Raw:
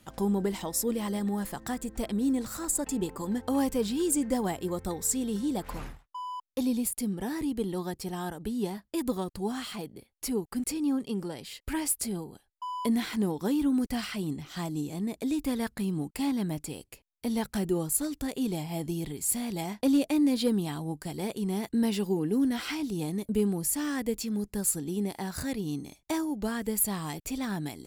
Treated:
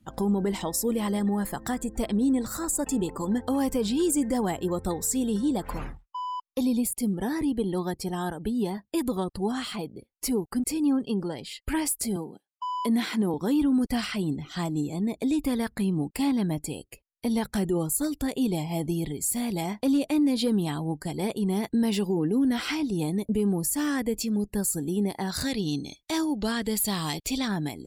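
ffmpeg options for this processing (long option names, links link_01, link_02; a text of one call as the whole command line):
ffmpeg -i in.wav -filter_complex "[0:a]asettb=1/sr,asplit=3[link_01][link_02][link_03];[link_01]atrim=end=12.164[link_04];[link_02]atrim=start=12.16:end=13.34,asetpts=PTS-STARTPTS,afade=type=in:duration=0.004:curve=qsin,afade=type=out:start_time=1.176:duration=0.004:curve=qsin,highpass=frequency=160:width=0.5412,highpass=frequency=160:width=1.3066[link_05];[link_03]atrim=start=13.336[link_06];[link_04][link_05]acrossfade=duration=0.004:curve1=hsin:curve2=qsin[link_07];[link_07][link_06]acrossfade=duration=0.004:curve1=qsin:curve2=hsin,asettb=1/sr,asplit=3[link_08][link_09][link_10];[link_08]atrim=end=25.294[link_11];[link_09]atrim=start=25.29:end=27.48,asetpts=PTS-STARTPTS,afade=type=in:duration=0.004:curve=qsin,afade=type=out:start_time=2.186:duration=0.004:curve=qsin,equalizer=frequency=4000:width_type=o:width=1.3:gain=9.5[link_12];[link_10]atrim=start=27.476[link_13];[link_11][link_12]acrossfade=duration=0.004:curve1=hsin:curve2=qsin[link_14];[link_14][link_13]acrossfade=duration=0.004:curve1=qsin:curve2=hsin,afftdn=noise_reduction=18:noise_floor=-52,alimiter=limit=-22dB:level=0:latency=1:release=49,volume=4.5dB" out.wav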